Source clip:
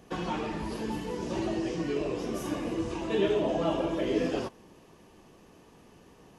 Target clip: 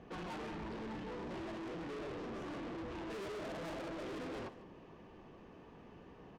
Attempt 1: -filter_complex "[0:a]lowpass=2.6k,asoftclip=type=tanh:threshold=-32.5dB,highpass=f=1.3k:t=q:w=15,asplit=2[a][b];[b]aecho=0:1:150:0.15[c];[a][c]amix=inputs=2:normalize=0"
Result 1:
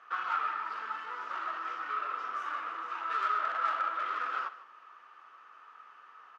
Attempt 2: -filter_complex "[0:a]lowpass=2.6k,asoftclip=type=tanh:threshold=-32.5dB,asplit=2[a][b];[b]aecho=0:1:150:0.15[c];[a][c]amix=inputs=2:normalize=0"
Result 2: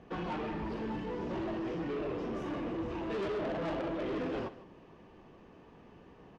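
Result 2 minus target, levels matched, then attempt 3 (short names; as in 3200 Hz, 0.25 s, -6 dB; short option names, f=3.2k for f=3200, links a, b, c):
soft clip: distortion -4 dB
-filter_complex "[0:a]lowpass=2.6k,asoftclip=type=tanh:threshold=-42.5dB,asplit=2[a][b];[b]aecho=0:1:150:0.15[c];[a][c]amix=inputs=2:normalize=0"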